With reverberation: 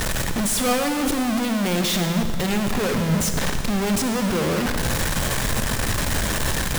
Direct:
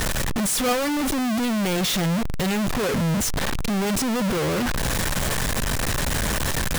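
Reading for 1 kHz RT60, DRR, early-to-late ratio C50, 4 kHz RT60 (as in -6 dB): 2.0 s, 6.0 dB, 6.5 dB, 1.9 s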